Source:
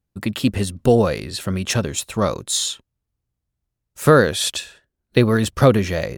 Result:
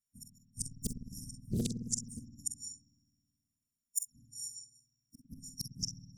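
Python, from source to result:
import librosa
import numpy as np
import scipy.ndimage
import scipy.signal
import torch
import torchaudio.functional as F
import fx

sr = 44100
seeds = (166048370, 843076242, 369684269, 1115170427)

y = fx.freq_snap(x, sr, grid_st=4)
y = fx.weighting(y, sr, curve='D')
y = fx.noise_reduce_blind(y, sr, reduce_db=14)
y = fx.gate_flip(y, sr, shuts_db=-7.0, range_db=-33)
y = fx.whisperise(y, sr, seeds[0])
y = fx.gate_flip(y, sr, shuts_db=-15.0, range_db=-37)
y = fx.brickwall_bandstop(y, sr, low_hz=270.0, high_hz=5400.0)
y = fx.echo_multitap(y, sr, ms=(46, 62), db=(-8.5, -16.0))
y = fx.rev_spring(y, sr, rt60_s=1.9, pass_ms=(53,), chirp_ms=20, drr_db=2.0)
y = fx.doppler_dist(y, sr, depth_ms=0.71)
y = y * 10.0 ** (-2.0 / 20.0)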